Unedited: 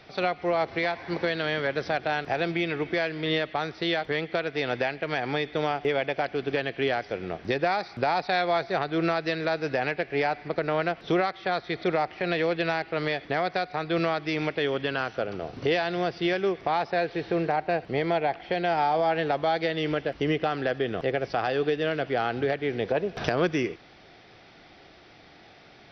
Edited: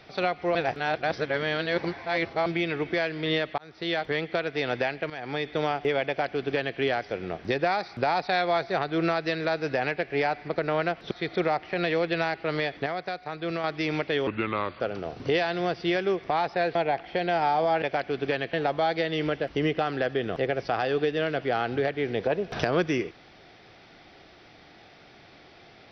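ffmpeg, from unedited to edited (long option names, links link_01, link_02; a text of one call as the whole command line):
ffmpeg -i in.wav -filter_complex "[0:a]asplit=13[link_01][link_02][link_03][link_04][link_05][link_06][link_07][link_08][link_09][link_10][link_11][link_12][link_13];[link_01]atrim=end=0.552[link_14];[link_02]atrim=start=0.548:end=2.462,asetpts=PTS-STARTPTS,areverse[link_15];[link_03]atrim=start=2.458:end=3.58,asetpts=PTS-STARTPTS,afade=type=out:start_time=1.118:duration=0.004:curve=hsin[link_16];[link_04]atrim=start=3.58:end=5.1,asetpts=PTS-STARTPTS,afade=type=in:duration=0.41,afade=type=out:start_time=1.516:duration=0.004:curve=hsin:silence=0.223872[link_17];[link_05]atrim=start=5.1:end=11.112,asetpts=PTS-STARTPTS,afade=type=in:duration=0.4:silence=0.223872[link_18];[link_06]atrim=start=11.588:end=13.342[link_19];[link_07]atrim=start=13.338:end=14.122,asetpts=PTS-STARTPTS,volume=-5dB[link_20];[link_08]atrim=start=14.118:end=14.754[link_21];[link_09]atrim=start=14.75:end=15.17,asetpts=PTS-STARTPTS,asetrate=34839,aresample=44100[link_22];[link_10]atrim=start=15.166:end=17.122[link_23];[link_11]atrim=start=18.108:end=19.182[link_24];[link_12]atrim=start=6.068:end=6.782[link_25];[link_13]atrim=start=19.178[link_26];[link_14][link_15]acrossfade=duration=0.004:curve1=hsin:curve2=hsin[link_27];[link_16][link_17][link_18]concat=n=3:v=0:a=1[link_28];[link_27][link_28]acrossfade=duration=0.004:curve1=hsin:curve2=hsin[link_29];[link_29][link_19]acrossfade=duration=0.004:curve1=hsin:curve2=hsin[link_30];[link_30][link_20]acrossfade=duration=0.004:curve1=hsin:curve2=hsin[link_31];[link_31][link_21]acrossfade=duration=0.004:curve1=hsin:curve2=hsin[link_32];[link_32][link_22]acrossfade=duration=0.004:curve1=hsin:curve2=hsin[link_33];[link_33][link_23]acrossfade=duration=0.004:curve1=hsin:curve2=hsin[link_34];[link_34][link_24]acrossfade=duration=0.004:curve1=hsin:curve2=hsin[link_35];[link_35][link_25]acrossfade=duration=0.004:curve1=hsin:curve2=hsin[link_36];[link_36][link_26]acrossfade=duration=0.004:curve1=hsin:curve2=hsin" out.wav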